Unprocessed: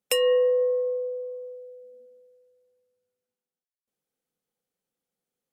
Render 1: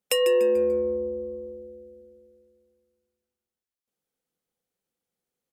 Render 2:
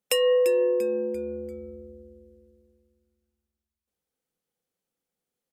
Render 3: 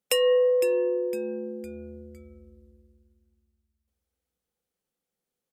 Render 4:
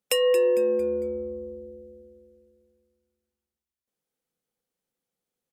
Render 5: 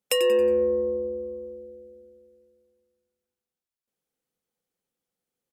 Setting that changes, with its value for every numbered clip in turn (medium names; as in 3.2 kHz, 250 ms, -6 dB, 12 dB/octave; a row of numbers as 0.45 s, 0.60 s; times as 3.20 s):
frequency-shifting echo, time: 146 ms, 343 ms, 508 ms, 226 ms, 91 ms